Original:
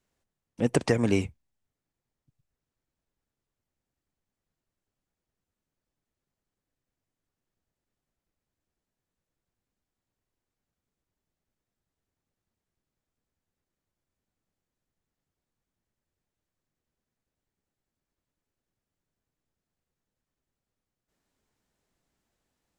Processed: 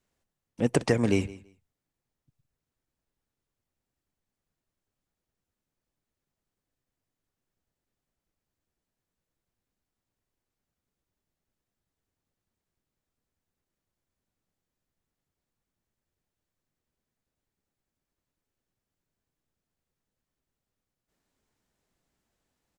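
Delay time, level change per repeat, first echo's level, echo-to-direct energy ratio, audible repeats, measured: 166 ms, -15.5 dB, -19.5 dB, -19.5 dB, 2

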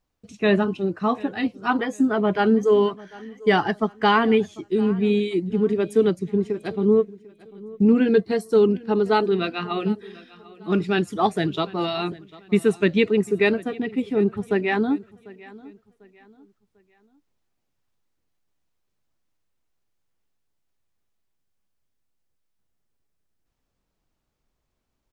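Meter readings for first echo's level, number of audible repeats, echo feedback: -21.0 dB, 2, 34%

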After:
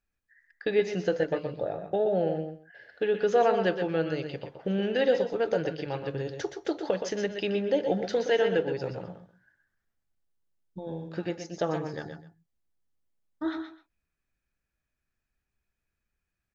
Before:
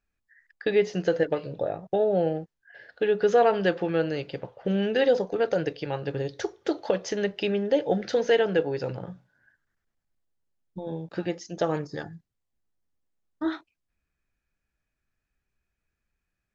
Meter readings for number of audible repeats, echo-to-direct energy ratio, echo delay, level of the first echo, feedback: 2, -7.0 dB, 121 ms, -8.5 dB, no regular repeats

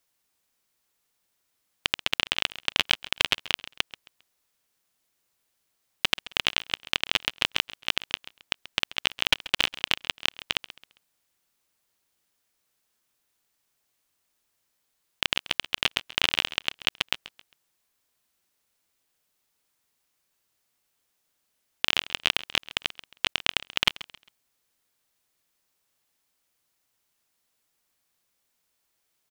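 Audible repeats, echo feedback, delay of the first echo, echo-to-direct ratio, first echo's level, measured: 2, 31%, 134 ms, -16.5 dB, -17.0 dB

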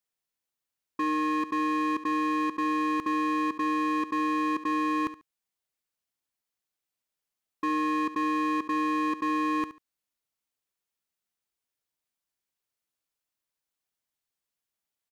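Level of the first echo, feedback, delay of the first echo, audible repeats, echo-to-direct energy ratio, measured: -14.0 dB, 21%, 71 ms, 2, -14.0 dB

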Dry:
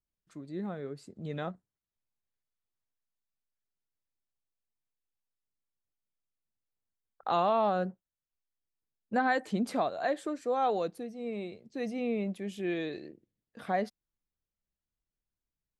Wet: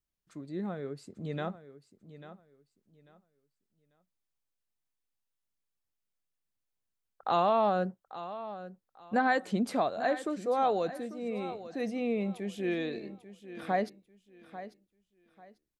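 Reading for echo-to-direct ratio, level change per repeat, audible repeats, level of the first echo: -13.5 dB, -12.0 dB, 2, -14.0 dB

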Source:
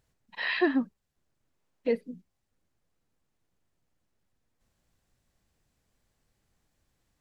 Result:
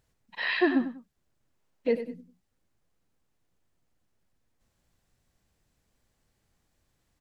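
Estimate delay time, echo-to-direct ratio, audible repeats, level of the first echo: 96 ms, -10.5 dB, 2, -11.0 dB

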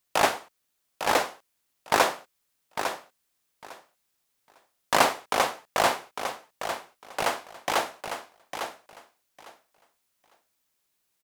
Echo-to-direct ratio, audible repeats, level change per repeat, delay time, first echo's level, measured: -8.0 dB, 2, -15.5 dB, 853 ms, -8.0 dB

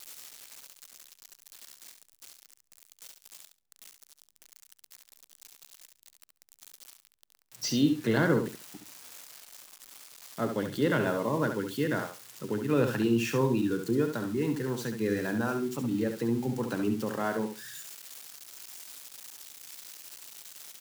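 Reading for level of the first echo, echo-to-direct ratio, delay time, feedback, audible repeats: -7.0 dB, -7.0 dB, 69 ms, 18%, 2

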